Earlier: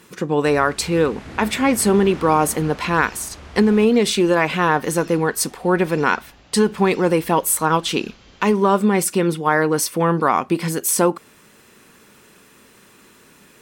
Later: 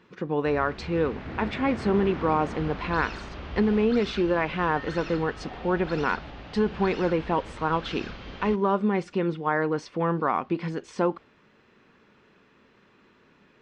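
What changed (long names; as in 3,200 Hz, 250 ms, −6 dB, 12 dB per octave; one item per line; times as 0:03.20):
speech −7.5 dB
second sound +9.0 dB
master: add Gaussian smoothing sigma 2.2 samples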